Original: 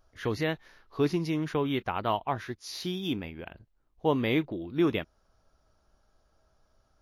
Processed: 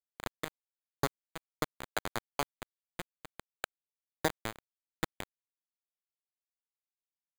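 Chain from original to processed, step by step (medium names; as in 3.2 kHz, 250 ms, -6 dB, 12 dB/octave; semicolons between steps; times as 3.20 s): high-order bell 1.8 kHz +10 dB 1.1 oct; transient shaper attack +2 dB, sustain -2 dB; compression 20:1, threshold -32 dBFS, peak gain reduction 15 dB; tempo 0.95×; overdrive pedal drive 34 dB, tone 3.8 kHz, clips at -20.5 dBFS; bit crusher 4-bit; distance through air 440 m; careless resampling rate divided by 8×, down filtered, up hold; trim +4 dB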